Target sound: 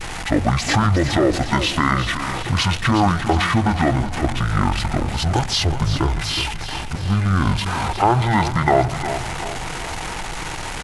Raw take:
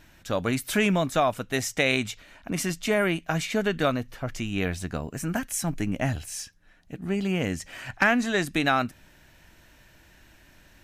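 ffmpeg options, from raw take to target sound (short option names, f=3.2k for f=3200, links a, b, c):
-filter_complex "[0:a]aeval=exprs='val(0)+0.5*0.0299*sgn(val(0))':c=same,asplit=2[a][b];[b]adelay=149,lowpass=f=2.4k:p=1,volume=-18.5dB,asplit=2[c][d];[d]adelay=149,lowpass=f=2.4k:p=1,volume=0.41,asplit=2[e][f];[f]adelay=149,lowpass=f=2.4k:p=1,volume=0.41[g];[c][e][g]amix=inputs=3:normalize=0[h];[a][h]amix=inputs=2:normalize=0,alimiter=limit=-14.5dB:level=0:latency=1:release=175,equalizer=f=4.2k:t=o:w=0.77:g=5,asplit=2[i][j];[j]aecho=0:1:364|728|1092|1456|1820|2184:0.316|0.164|0.0855|0.0445|0.0231|0.012[k];[i][k]amix=inputs=2:normalize=0,adynamicequalizer=threshold=0.00891:dfrequency=1400:dqfactor=2.1:tfrequency=1400:tqfactor=2.1:attack=5:release=100:ratio=0.375:range=2.5:mode=boostabove:tftype=bell,asetrate=22696,aresample=44100,atempo=1.94306,volume=7dB"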